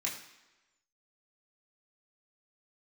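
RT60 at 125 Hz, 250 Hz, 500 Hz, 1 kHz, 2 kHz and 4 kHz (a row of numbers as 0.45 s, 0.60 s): 0.85 s, 1.0 s, 1.1 s, 1.1 s, 1.1 s, 1.0 s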